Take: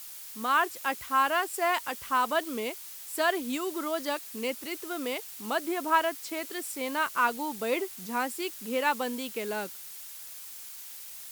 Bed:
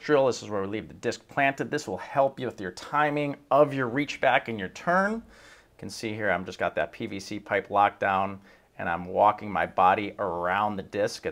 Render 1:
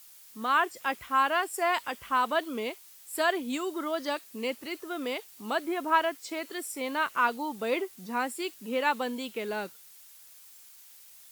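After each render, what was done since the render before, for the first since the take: noise print and reduce 9 dB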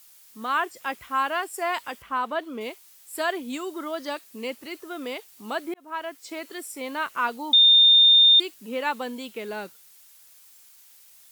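2.02–2.61 high shelf 3900 Hz -10.5 dB; 5.74–6.32 fade in; 7.53–8.4 bleep 3630 Hz -11.5 dBFS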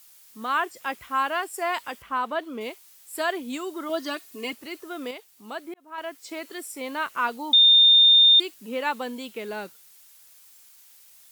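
3.89–4.53 comb 2.8 ms, depth 88%; 5.11–5.98 gain -5.5 dB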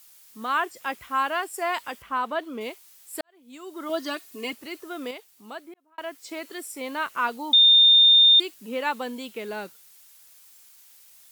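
3.21–3.89 fade in quadratic; 5.09–5.98 fade out equal-power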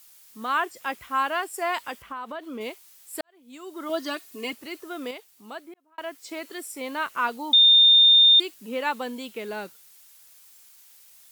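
1.98–2.6 compressor, threshold -31 dBFS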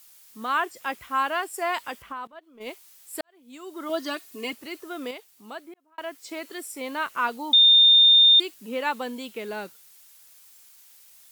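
2.27–2.69 gate -33 dBFS, range -19 dB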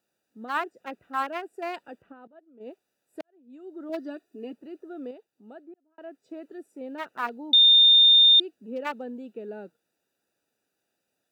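Wiener smoothing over 41 samples; HPF 180 Hz 12 dB/oct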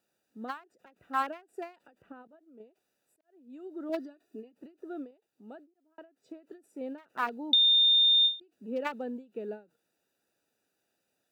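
compressor, threshold -21 dBFS, peak gain reduction 6.5 dB; ending taper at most 200 dB/s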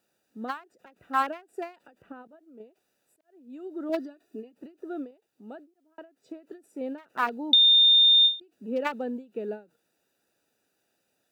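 gain +4.5 dB

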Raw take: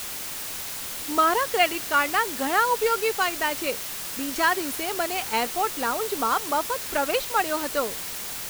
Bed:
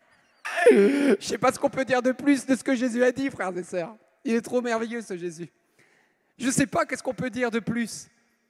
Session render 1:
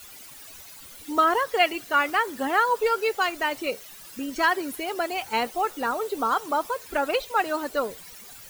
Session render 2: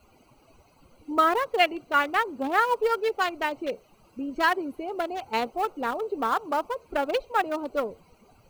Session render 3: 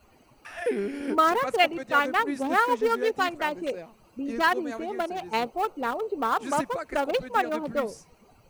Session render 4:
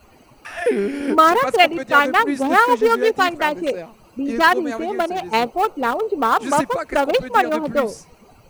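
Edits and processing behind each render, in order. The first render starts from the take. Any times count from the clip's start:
denoiser 15 dB, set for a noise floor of -34 dBFS
Wiener smoothing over 25 samples
add bed -11.5 dB
gain +8.5 dB; limiter -1 dBFS, peak gain reduction 1 dB

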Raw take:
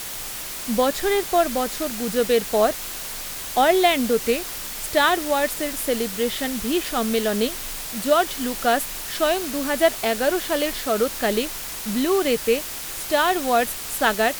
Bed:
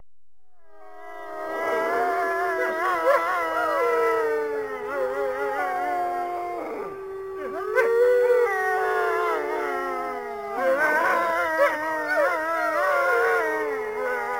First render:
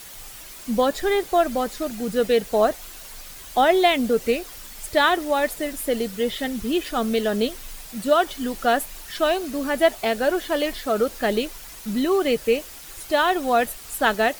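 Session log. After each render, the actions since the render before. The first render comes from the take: denoiser 10 dB, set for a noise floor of -32 dBFS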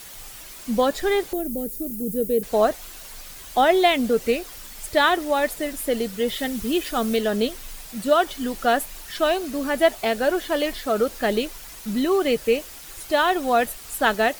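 1.33–2.43 EQ curve 440 Hz 0 dB, 650 Hz -15 dB, 1100 Hz -29 dB, 2000 Hz -18 dB, 3700 Hz -19 dB, 6000 Hz -10 dB, 13000 Hz +9 dB; 6.28–7.17 high shelf 6700 Hz +5 dB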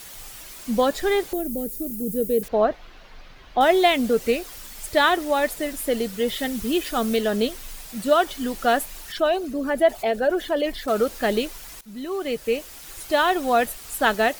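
2.48–3.61 air absorption 280 m; 9.12–10.88 formant sharpening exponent 1.5; 11.81–12.89 fade in, from -17.5 dB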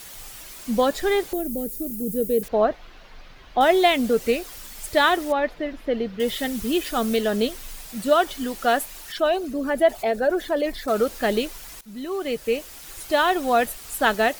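5.32–6.2 air absorption 280 m; 8.44–9.24 low shelf 190 Hz -5.5 dB; 10.04–10.94 bell 3000 Hz -8 dB 0.22 oct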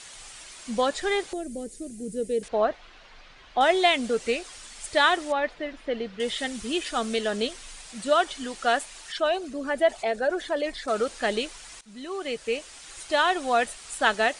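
Chebyshev low-pass 9600 Hz, order 6; low shelf 470 Hz -8 dB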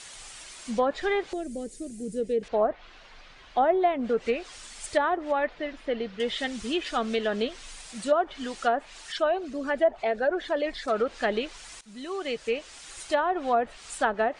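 treble ducked by the level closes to 920 Hz, closed at -18 dBFS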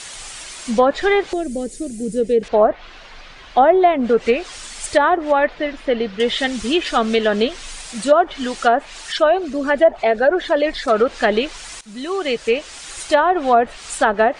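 gain +10.5 dB; limiter -3 dBFS, peak gain reduction 3 dB

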